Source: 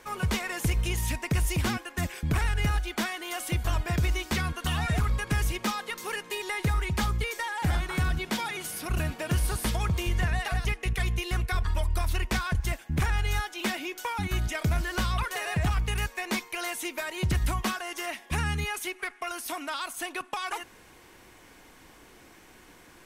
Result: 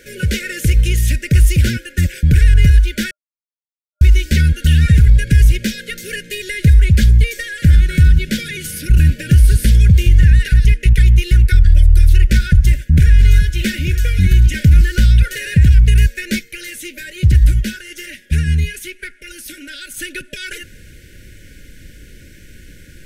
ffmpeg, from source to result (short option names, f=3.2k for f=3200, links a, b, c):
-filter_complex "[0:a]asettb=1/sr,asplit=3[a][b][c];[a]atrim=end=12.214[d];[b]atrim=start=12.21:end=14.84,asetpts=PTS-STARTPTS,afade=t=in:d=0.004:c=qsin,afade=t=out:st=2.626:d=0.004:c=qsin,aecho=1:1:84|892:0.119|0.299,atrim=end_sample=115983[e];[c]atrim=start=14.836[f];[d][e]acrossfade=d=0.004:c1=hsin:c2=qsin[g];[g][f]acrossfade=d=0.004:c1=qsin:c2=hsin,asplit=3[h][i][j];[h]afade=t=out:st=16.38:d=0.02[k];[i]flanger=delay=2.1:depth=7.7:regen=-74:speed=1.1:shape=triangular,afade=t=in:st=16.38:d=0.02,afade=t=out:st=19.9:d=0.02[l];[j]afade=t=in:st=19.9:d=0.02[m];[k][l][m]amix=inputs=3:normalize=0,asplit=3[n][o][p];[n]atrim=end=3.11,asetpts=PTS-STARTPTS,afade=t=out:st=3.106:d=0.004:c=hsin[q];[o]atrim=start=3.11:end=4.01,asetpts=PTS-STARTPTS,volume=0[r];[p]atrim=start=4.01,asetpts=PTS-STARTPTS,afade=t=in:d=0.004:c=hsin[s];[q][r][s]concat=n=3:v=0:a=1,afftfilt=real='re*(1-between(b*sr/4096,610,1400))':imag='im*(1-between(b*sr/4096,610,1400))':win_size=4096:overlap=0.75,asubboost=boost=5:cutoff=160,alimiter=level_in=10dB:limit=-1dB:release=50:level=0:latency=1,volume=-1dB"